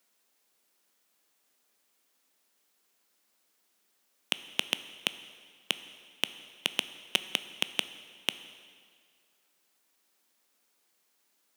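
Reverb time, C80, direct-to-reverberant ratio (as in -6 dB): 1.9 s, 14.5 dB, 12.0 dB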